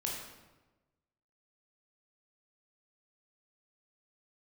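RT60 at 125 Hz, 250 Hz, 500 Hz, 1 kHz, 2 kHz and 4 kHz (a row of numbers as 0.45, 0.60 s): 1.4, 1.3, 1.2, 1.1, 0.95, 0.80 s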